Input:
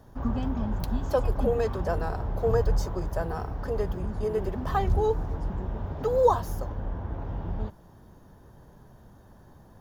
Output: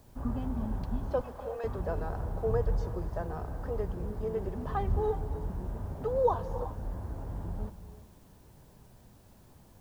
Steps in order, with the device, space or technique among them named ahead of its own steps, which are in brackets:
cassette deck with a dirty head (head-to-tape spacing loss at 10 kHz 22 dB; tape wow and flutter; white noise bed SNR 35 dB)
0:01.21–0:01.64: high-pass filter 690 Hz 12 dB per octave
reverb whose tail is shaped and stops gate 390 ms rising, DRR 12 dB
level −4.5 dB

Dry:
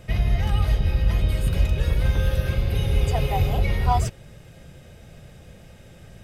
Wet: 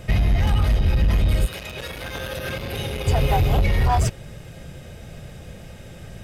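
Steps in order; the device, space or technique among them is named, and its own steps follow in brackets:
limiter into clipper (brickwall limiter −15.5 dBFS, peak gain reduction 7 dB; hard clipping −20 dBFS, distortion −16 dB)
0:01.45–0:03.06: high-pass filter 1,100 Hz → 280 Hz 6 dB per octave
level +6.5 dB

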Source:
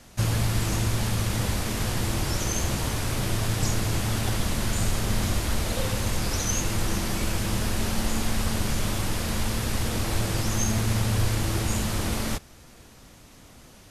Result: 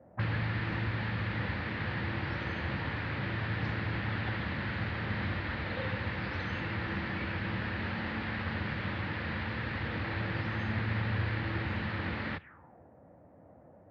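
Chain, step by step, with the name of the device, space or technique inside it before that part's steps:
envelope filter bass rig (envelope-controlled low-pass 550–4,400 Hz up, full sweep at −24 dBFS; loudspeaker in its box 84–2,300 Hz, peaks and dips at 120 Hz −5 dB, 230 Hz −5 dB, 400 Hz −7 dB, 670 Hz −7 dB, 1,100 Hz −3 dB, 1,800 Hz +6 dB)
level −3.5 dB

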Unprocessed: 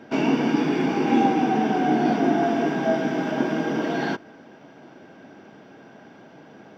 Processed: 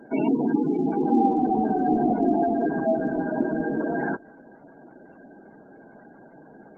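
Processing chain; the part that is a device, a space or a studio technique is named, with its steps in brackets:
0:02.71–0:03.34: high-pass filter 70 Hz 24 dB per octave
noise-suppressed video call (high-pass filter 120 Hz 6 dB per octave; gate on every frequency bin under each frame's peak −15 dB strong; Opus 20 kbit/s 48,000 Hz)

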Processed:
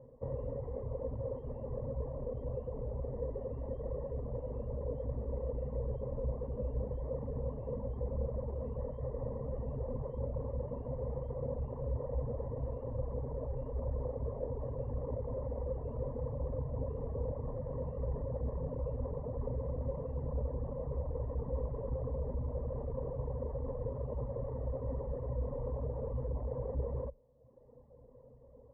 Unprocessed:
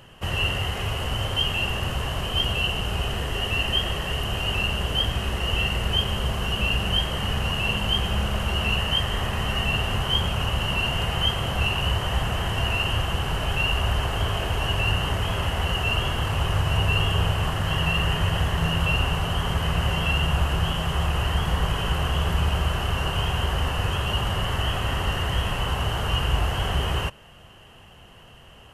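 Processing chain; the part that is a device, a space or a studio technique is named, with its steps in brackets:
overdriven synthesiser ladder filter (soft clipping −20.5 dBFS, distortion −14 dB; transistor ladder low-pass 620 Hz, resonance 55%)
reverb reduction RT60 1.1 s
EQ curve with evenly spaced ripples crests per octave 1, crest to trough 14 dB

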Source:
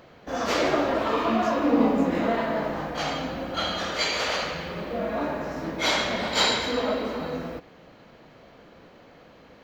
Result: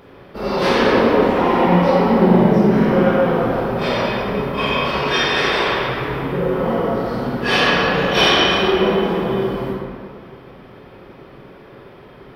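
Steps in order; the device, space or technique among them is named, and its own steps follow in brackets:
slowed and reverbed (speed change −22%; convolution reverb RT60 2.0 s, pre-delay 20 ms, DRR −3 dB)
level +4.5 dB

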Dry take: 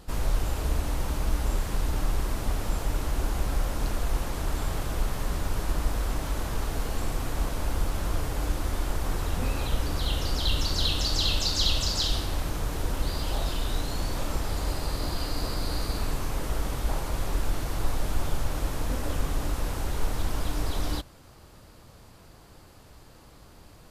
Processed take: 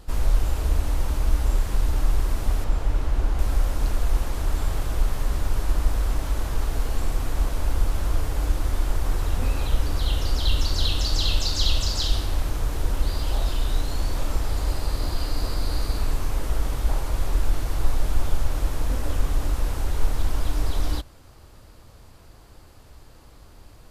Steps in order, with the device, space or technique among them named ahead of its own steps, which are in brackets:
0:02.64–0:03.39: low-pass filter 3,400 Hz 6 dB per octave
low shelf boost with a cut just above (low-shelf EQ 81 Hz +7.5 dB; parametric band 170 Hz −4.5 dB 0.6 octaves)

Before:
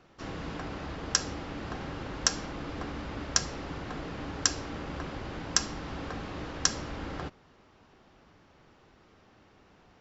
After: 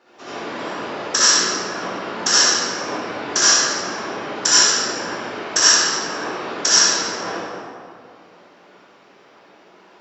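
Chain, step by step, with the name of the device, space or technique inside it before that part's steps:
peak hold with a decay on every bin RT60 1.28 s
reverb reduction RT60 0.74 s
whispering ghost (random phases in short frames; high-pass filter 370 Hz 12 dB per octave; convolution reverb RT60 2.2 s, pre-delay 54 ms, DRR −10 dB)
level +2 dB

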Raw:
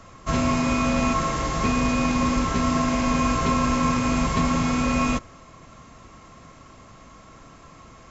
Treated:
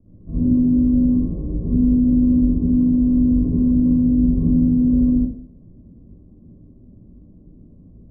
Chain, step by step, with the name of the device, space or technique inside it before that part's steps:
next room (low-pass filter 350 Hz 24 dB per octave; convolution reverb RT60 0.50 s, pre-delay 54 ms, DRR −10 dB)
level −5 dB

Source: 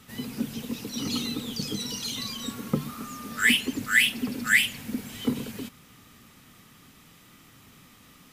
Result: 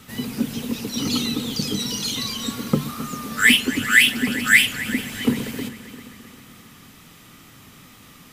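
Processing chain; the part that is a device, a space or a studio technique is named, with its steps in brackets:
multi-head tape echo (echo machine with several playback heads 132 ms, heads second and third, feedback 49%, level −16.5 dB; tape wow and flutter 23 cents)
level +6.5 dB

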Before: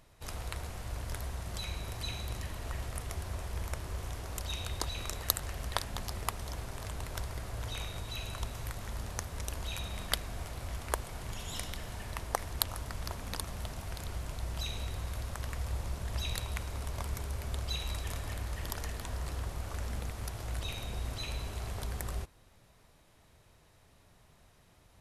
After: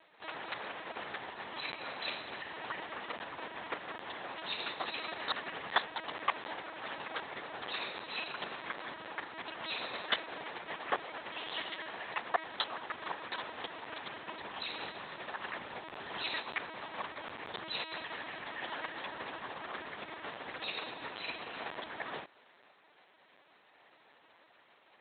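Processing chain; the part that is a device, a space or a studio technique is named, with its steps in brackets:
0:05.12–0:05.96: low-shelf EQ 120 Hz +2.5 dB
talking toy (linear-prediction vocoder at 8 kHz; high-pass filter 520 Hz 12 dB per octave; parametric band 1,800 Hz +4 dB 0.21 octaves)
level +4 dB

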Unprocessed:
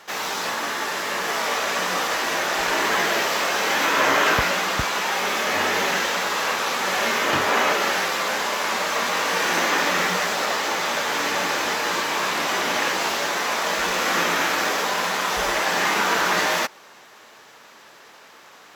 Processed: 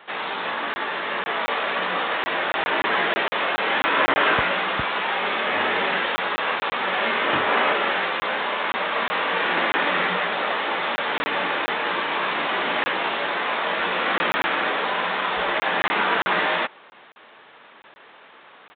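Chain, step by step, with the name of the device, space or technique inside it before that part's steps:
call with lost packets (high-pass filter 140 Hz 6 dB per octave; downsampling to 8,000 Hz; dropped packets of 20 ms random)

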